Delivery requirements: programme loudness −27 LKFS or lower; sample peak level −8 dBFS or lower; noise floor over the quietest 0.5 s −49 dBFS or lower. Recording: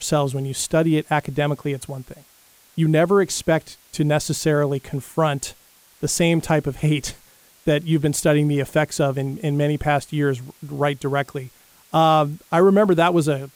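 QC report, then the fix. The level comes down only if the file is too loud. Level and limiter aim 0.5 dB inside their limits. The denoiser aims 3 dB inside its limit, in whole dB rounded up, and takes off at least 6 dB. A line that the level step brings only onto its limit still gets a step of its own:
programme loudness −20.5 LKFS: out of spec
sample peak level −5.5 dBFS: out of spec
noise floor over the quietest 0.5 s −54 dBFS: in spec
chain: level −7 dB

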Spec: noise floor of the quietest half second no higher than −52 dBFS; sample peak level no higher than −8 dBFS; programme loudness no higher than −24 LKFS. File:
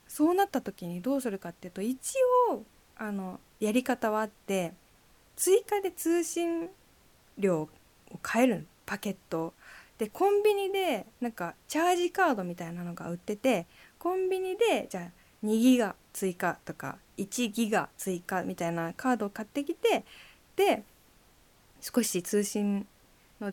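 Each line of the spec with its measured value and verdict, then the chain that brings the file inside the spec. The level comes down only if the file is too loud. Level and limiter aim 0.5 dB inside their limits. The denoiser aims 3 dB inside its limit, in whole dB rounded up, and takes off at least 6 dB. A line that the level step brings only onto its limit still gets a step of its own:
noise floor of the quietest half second −62 dBFS: in spec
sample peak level −12.0 dBFS: in spec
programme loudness −30.0 LKFS: in spec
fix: no processing needed

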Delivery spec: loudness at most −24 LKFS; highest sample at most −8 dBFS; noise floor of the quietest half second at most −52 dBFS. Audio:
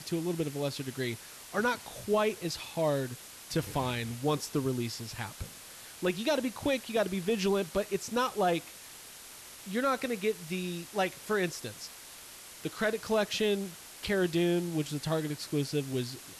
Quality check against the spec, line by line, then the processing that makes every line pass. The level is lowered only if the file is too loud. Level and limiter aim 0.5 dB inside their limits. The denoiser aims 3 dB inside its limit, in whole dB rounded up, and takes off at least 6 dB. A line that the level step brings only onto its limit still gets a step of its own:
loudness −32.0 LKFS: in spec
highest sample −18.5 dBFS: in spec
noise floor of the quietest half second −49 dBFS: out of spec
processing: broadband denoise 6 dB, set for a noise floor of −49 dBFS

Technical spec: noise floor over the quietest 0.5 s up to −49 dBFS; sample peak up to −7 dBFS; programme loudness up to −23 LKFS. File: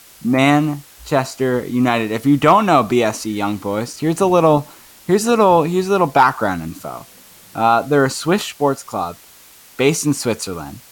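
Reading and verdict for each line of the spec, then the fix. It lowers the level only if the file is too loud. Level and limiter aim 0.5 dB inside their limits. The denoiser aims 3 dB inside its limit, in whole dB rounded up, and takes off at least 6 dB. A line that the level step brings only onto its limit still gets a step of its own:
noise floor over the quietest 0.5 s −45 dBFS: out of spec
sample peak −2.5 dBFS: out of spec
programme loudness −16.5 LKFS: out of spec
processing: level −7 dB

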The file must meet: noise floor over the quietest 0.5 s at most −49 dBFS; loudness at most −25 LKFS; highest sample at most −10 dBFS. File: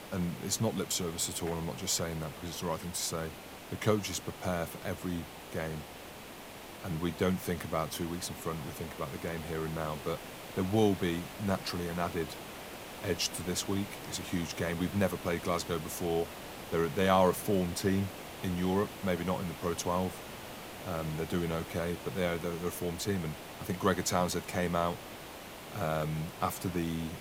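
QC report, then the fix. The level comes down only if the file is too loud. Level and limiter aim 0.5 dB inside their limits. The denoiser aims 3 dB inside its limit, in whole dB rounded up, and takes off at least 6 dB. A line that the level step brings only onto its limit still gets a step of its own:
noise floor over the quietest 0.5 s −47 dBFS: out of spec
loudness −34.0 LKFS: in spec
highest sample −11.5 dBFS: in spec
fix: broadband denoise 6 dB, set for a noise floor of −47 dBFS

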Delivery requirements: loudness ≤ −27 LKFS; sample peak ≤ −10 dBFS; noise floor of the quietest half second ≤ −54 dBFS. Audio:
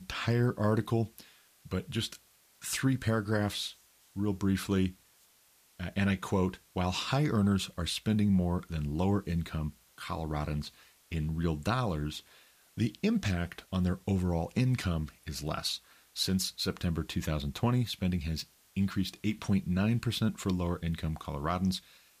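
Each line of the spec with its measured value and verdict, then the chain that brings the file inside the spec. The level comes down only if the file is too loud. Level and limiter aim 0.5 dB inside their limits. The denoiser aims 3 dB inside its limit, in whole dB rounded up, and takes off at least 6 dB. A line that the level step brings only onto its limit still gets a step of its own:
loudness −32.0 LKFS: in spec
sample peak −18.0 dBFS: in spec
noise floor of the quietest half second −65 dBFS: in spec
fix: no processing needed

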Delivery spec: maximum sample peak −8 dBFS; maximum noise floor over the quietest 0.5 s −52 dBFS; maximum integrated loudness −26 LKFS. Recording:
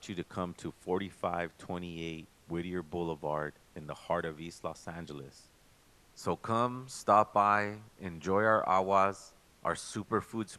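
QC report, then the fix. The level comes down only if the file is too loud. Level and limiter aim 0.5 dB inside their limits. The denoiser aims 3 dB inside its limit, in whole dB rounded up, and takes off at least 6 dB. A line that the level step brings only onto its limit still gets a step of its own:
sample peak −12.0 dBFS: in spec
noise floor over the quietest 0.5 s −63 dBFS: in spec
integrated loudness −33.0 LKFS: in spec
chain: no processing needed

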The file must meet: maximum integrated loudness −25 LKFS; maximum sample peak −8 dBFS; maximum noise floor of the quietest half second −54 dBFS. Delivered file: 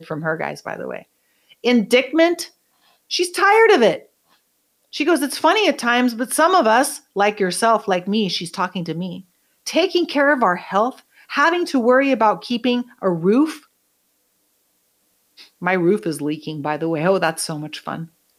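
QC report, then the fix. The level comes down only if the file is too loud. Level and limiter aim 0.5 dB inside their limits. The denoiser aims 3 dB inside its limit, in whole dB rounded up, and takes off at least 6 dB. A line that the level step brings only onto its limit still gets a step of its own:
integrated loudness −18.5 LKFS: out of spec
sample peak −4.0 dBFS: out of spec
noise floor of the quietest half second −66 dBFS: in spec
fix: level −7 dB

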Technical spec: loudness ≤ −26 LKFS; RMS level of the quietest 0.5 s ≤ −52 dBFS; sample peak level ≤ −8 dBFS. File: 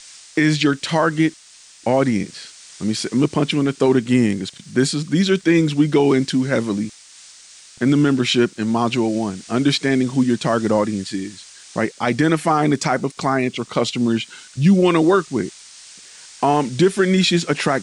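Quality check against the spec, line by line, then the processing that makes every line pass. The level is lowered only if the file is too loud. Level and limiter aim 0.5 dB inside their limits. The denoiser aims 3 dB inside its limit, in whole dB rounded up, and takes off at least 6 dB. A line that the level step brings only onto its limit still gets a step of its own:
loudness −18.5 LKFS: out of spec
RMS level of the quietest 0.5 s −46 dBFS: out of spec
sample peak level −5.5 dBFS: out of spec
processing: level −8 dB

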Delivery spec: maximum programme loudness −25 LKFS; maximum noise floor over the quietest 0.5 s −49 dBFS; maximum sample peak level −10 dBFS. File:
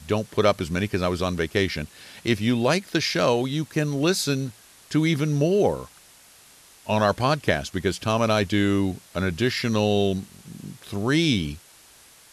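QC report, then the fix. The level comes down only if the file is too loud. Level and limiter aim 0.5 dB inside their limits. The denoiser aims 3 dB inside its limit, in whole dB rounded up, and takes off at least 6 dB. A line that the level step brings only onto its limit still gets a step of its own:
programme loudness −23.5 LKFS: out of spec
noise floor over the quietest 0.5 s −52 dBFS: in spec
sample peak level −6.5 dBFS: out of spec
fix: level −2 dB
brickwall limiter −10.5 dBFS

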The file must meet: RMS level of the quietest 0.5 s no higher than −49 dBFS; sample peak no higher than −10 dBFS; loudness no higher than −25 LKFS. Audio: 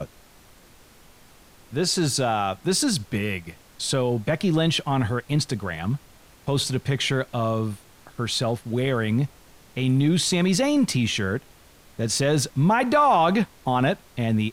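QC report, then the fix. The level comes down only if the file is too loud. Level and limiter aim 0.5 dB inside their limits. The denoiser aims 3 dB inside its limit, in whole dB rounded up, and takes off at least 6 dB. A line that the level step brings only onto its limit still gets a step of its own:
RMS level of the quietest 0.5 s −52 dBFS: in spec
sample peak −9.5 dBFS: out of spec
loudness −23.5 LKFS: out of spec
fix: level −2 dB

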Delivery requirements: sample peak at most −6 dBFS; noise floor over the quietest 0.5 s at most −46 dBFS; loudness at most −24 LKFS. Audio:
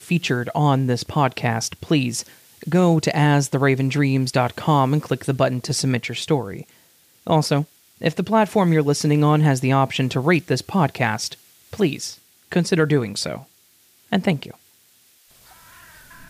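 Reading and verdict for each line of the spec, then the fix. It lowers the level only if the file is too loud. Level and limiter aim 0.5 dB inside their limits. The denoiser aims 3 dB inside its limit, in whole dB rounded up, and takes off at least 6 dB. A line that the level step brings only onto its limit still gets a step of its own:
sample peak −4.5 dBFS: out of spec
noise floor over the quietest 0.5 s −56 dBFS: in spec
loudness −20.5 LKFS: out of spec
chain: level −4 dB

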